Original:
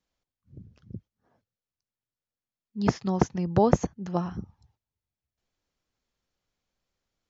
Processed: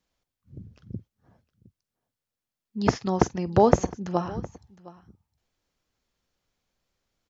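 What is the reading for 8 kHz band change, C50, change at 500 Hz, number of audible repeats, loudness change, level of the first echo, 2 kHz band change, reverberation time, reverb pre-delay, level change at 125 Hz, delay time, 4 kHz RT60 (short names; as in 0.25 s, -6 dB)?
n/a, none, +3.5 dB, 2, +2.0 dB, -19.5 dB, +4.0 dB, none, none, 0.0 dB, 48 ms, none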